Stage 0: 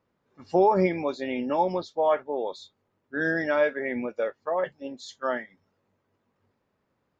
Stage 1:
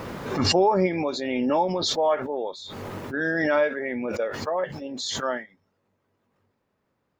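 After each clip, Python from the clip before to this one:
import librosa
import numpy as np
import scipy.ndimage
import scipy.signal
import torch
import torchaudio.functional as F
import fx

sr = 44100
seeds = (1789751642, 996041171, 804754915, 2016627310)

y = fx.pre_swell(x, sr, db_per_s=25.0)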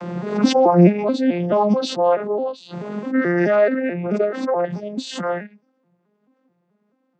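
y = fx.vocoder_arp(x, sr, chord='minor triad', root=53, every_ms=216)
y = y * 10.0 ** (7.5 / 20.0)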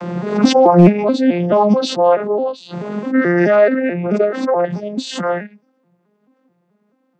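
y = np.clip(x, -10.0 ** (-5.5 / 20.0), 10.0 ** (-5.5 / 20.0))
y = y * 10.0 ** (4.5 / 20.0)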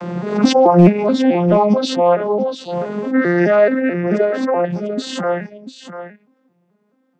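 y = x + 10.0 ** (-11.0 / 20.0) * np.pad(x, (int(693 * sr / 1000.0), 0))[:len(x)]
y = y * 10.0 ** (-1.0 / 20.0)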